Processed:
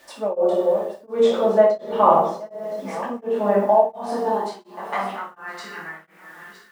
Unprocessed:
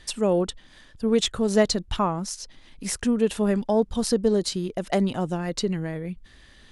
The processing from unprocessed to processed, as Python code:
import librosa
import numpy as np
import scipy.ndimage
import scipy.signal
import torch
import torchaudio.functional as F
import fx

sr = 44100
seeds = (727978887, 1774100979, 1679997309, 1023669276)

y = fx.reverse_delay_fb(x, sr, ms=506, feedback_pct=47, wet_db=-12.0)
y = fx.curve_eq(y, sr, hz=(150.0, 320.0, 560.0, 820.0, 5100.0), db=(0, -3, -11, -4, -24))
y = fx.filter_sweep_highpass(y, sr, from_hz=570.0, to_hz=1400.0, start_s=3.31, end_s=5.44, q=3.4)
y = fx.air_absorb(y, sr, metres=64.0, at=(1.32, 4.07))
y = fx.room_shoebox(y, sr, seeds[0], volume_m3=240.0, walls='mixed', distance_m=2.5)
y = fx.quant_dither(y, sr, seeds[1], bits=10, dither='none')
y = y * np.abs(np.cos(np.pi * 1.4 * np.arange(len(y)) / sr))
y = y * 10.0 ** (6.5 / 20.0)